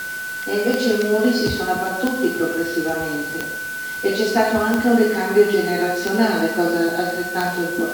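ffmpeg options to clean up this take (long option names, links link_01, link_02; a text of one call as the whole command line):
ffmpeg -i in.wav -af "adeclick=threshold=4,bandreject=frequency=1500:width=30,afwtdn=0.014" out.wav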